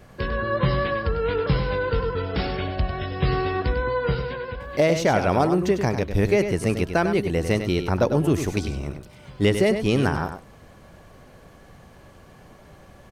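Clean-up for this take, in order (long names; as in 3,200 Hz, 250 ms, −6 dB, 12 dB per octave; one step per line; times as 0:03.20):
clipped peaks rebuilt −9.5 dBFS
echo removal 99 ms −8.5 dB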